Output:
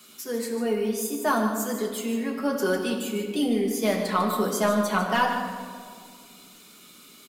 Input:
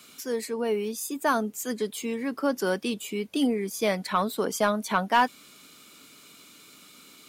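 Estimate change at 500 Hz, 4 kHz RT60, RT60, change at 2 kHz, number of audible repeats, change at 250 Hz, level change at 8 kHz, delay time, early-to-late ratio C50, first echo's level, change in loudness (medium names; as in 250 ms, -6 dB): +2.0 dB, 1.1 s, 2.0 s, +1.0 dB, 1, +3.0 dB, +2.0 dB, 149 ms, 4.0 dB, -9.5 dB, +1.5 dB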